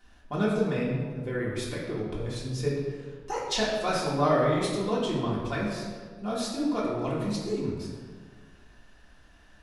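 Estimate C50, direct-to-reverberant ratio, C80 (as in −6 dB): 1.0 dB, −7.0 dB, 3.5 dB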